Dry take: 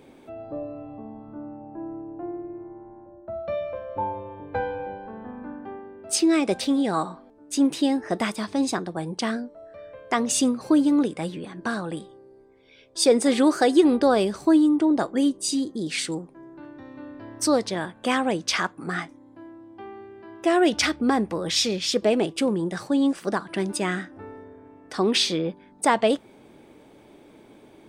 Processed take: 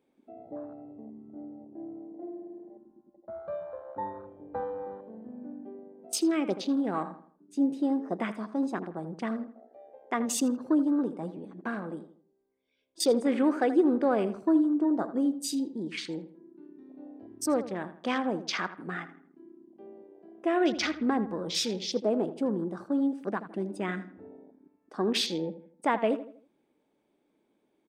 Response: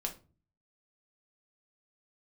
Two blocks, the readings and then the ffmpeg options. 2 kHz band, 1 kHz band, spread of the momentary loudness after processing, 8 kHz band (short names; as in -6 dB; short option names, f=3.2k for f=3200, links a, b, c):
-7.5 dB, -7.0 dB, 19 LU, -9.0 dB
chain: -filter_complex "[0:a]afwtdn=0.0224,lowshelf=f=150:t=q:w=1.5:g=-6.5,asplit=2[a][b];[b]adelay=81,lowpass=f=2.5k:p=1,volume=-12.5dB,asplit=2[c][d];[d]adelay=81,lowpass=f=2.5k:p=1,volume=0.4,asplit=2[e][f];[f]adelay=81,lowpass=f=2.5k:p=1,volume=0.4,asplit=2[g][h];[h]adelay=81,lowpass=f=2.5k:p=1,volume=0.4[i];[a][c][e][g][i]amix=inputs=5:normalize=0,volume=-7dB"